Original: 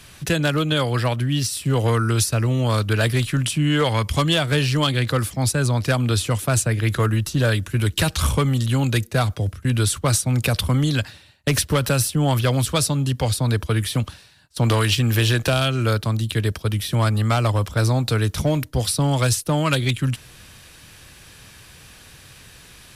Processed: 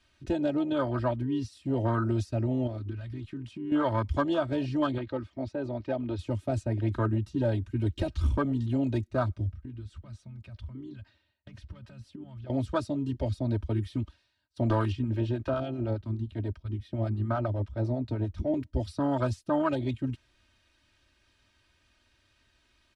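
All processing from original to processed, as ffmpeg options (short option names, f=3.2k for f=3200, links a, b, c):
-filter_complex "[0:a]asettb=1/sr,asplit=3[a][b][c];[a]atrim=end=2.674[d];[b]atrim=start=2.67:end=3.72,asetpts=PTS-STARTPTS,afade=t=in:d=0.004:c=qsin,afade=t=out:st=1.046:d=0.004:c=qsin,equalizer=f=12k:t=o:w=1.8:g=-7.5,acompressor=threshold=-24dB:ratio=6:attack=3.2:release=140:knee=1:detection=peak,asoftclip=type=hard:threshold=-21.5dB[e];[c]atrim=start=3.716[f];[d][e]acrossfade=d=0.004:c1=hsin:c2=qsin[g];[g][f]acrossfade=d=0.004:c1=qsin:c2=hsin,asettb=1/sr,asplit=3[h][i][j];[h]atrim=end=4.984[k];[i]atrim=start=4.98:end=6.19,asetpts=PTS-STARTPTS,afade=t=in:d=0.004:c=qsin,afade=t=out:st=1.206:d=0.004:c=qsin,lowpass=5.4k,bass=f=250:g=-9,treble=f=4k:g=-7[l];[j]atrim=start=6.186[m];[k][l]acrossfade=d=0.004:c1=hsin:c2=qsin[n];[n][m]acrossfade=d=0.004:c1=qsin:c2=hsin,asettb=1/sr,asplit=3[o][p][q];[o]atrim=end=9.524[r];[p]atrim=start=9.52:end=12.5,asetpts=PTS-STARTPTS,afade=t=in:d=0.004:c=qsin,afade=t=out:st=2.976:d=0.004:c=qsin,lowpass=f=3.5k:p=1,acompressor=threshold=-28dB:ratio=16:attack=3.2:release=140:knee=1:detection=peak[s];[q]atrim=start=12.496[t];[r][s]acrossfade=d=0.004:c1=hsin:c2=qsin[u];[u][t]acrossfade=d=0.004:c1=qsin:c2=hsin,asettb=1/sr,asplit=3[v][w][x];[v]atrim=end=14.924[y];[w]atrim=start=14.92:end=18.54,asetpts=PTS-STARTPTS,afade=t=in:d=0.004:c=qsin,afade=t=out:st=3.616:d=0.004:c=qsin,highshelf=f=4.7k:g=-9.5,acrossover=split=660[z][aa];[z]aeval=exprs='val(0)*(1-0.5/2+0.5/2*cos(2*PI*10*n/s))':c=same[ab];[aa]aeval=exprs='val(0)*(1-0.5/2-0.5/2*cos(2*PI*10*n/s))':c=same[ac];[ab][ac]amix=inputs=2:normalize=0[ad];[x]atrim=start=18.536[ae];[y][ad]acrossfade=d=0.004:c1=hsin:c2=qsin[af];[af][ae]acrossfade=d=0.004:c1=qsin:c2=hsin,lowpass=5.1k,afwtdn=0.0891,aecho=1:1:3.2:0.86,volume=-7dB"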